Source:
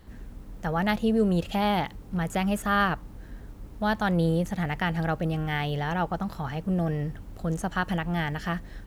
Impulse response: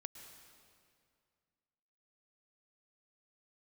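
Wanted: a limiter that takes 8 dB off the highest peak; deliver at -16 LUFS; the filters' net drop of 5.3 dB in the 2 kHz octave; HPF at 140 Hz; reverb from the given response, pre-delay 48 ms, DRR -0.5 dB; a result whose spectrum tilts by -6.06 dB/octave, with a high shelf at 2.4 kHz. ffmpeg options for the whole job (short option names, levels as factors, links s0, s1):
-filter_complex "[0:a]highpass=140,equalizer=f=2000:t=o:g=-8.5,highshelf=f=2400:g=3.5,alimiter=limit=0.106:level=0:latency=1,asplit=2[s0][s1];[1:a]atrim=start_sample=2205,adelay=48[s2];[s1][s2]afir=irnorm=-1:irlink=0,volume=1.78[s3];[s0][s3]amix=inputs=2:normalize=0,volume=3.76"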